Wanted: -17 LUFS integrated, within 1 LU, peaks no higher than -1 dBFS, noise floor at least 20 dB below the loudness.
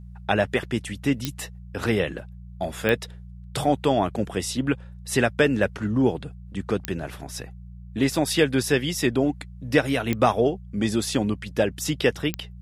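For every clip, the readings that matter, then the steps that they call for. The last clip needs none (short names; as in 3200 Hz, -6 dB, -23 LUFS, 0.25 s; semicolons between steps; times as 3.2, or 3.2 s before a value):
clicks 5; hum 60 Hz; harmonics up to 180 Hz; hum level -38 dBFS; loudness -24.5 LUFS; peak -4.5 dBFS; loudness target -17.0 LUFS
-> de-click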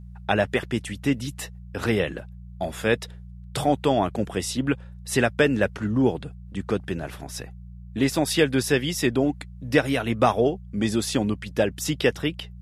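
clicks 0; hum 60 Hz; harmonics up to 180 Hz; hum level -38 dBFS
-> de-hum 60 Hz, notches 3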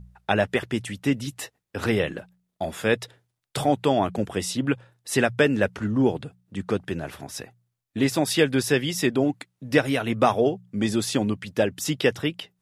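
hum none; loudness -24.5 LUFS; peak -4.5 dBFS; loudness target -17.0 LUFS
-> gain +7.5 dB; limiter -1 dBFS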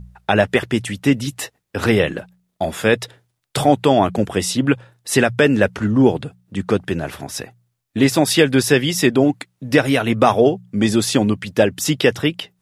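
loudness -17.5 LUFS; peak -1.0 dBFS; noise floor -72 dBFS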